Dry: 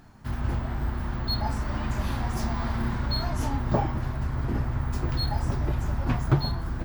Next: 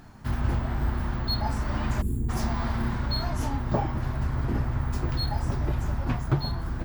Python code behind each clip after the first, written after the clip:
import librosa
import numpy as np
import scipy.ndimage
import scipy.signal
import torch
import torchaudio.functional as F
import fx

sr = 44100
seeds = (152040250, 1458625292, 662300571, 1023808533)

y = fx.spec_box(x, sr, start_s=2.02, length_s=0.27, low_hz=490.0, high_hz=6800.0, gain_db=-28)
y = fx.rider(y, sr, range_db=4, speed_s=0.5)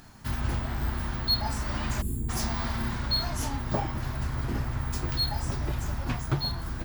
y = fx.high_shelf(x, sr, hz=2400.0, db=11.5)
y = F.gain(torch.from_numpy(y), -3.5).numpy()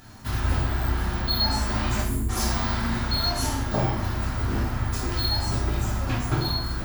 y = fx.rev_plate(x, sr, seeds[0], rt60_s=0.72, hf_ratio=0.9, predelay_ms=0, drr_db=-4.0)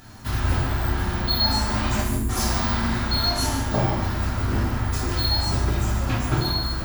y = x + 10.0 ** (-9.0 / 20.0) * np.pad(x, (int(145 * sr / 1000.0), 0))[:len(x)]
y = F.gain(torch.from_numpy(y), 2.0).numpy()